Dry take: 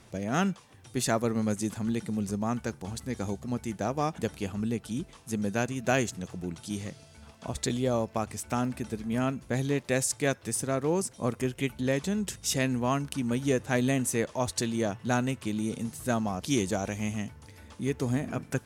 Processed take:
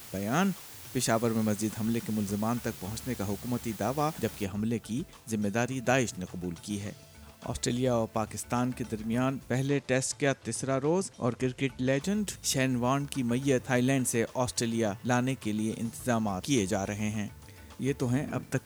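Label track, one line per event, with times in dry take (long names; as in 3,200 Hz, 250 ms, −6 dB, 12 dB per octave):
4.450000	4.450000	noise floor change −47 dB −62 dB
9.680000	12.010000	low-pass filter 7,500 Hz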